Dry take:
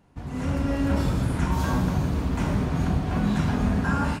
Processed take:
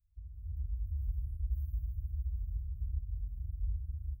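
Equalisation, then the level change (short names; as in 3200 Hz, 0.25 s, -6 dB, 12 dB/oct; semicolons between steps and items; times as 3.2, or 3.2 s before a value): inverse Chebyshev band-stop 290–6300 Hz, stop band 70 dB; bell 730 Hz +10.5 dB 1.8 oct; -4.5 dB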